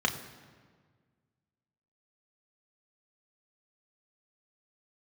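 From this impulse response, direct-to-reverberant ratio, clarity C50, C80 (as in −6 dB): 2.5 dB, 11.0 dB, 12.0 dB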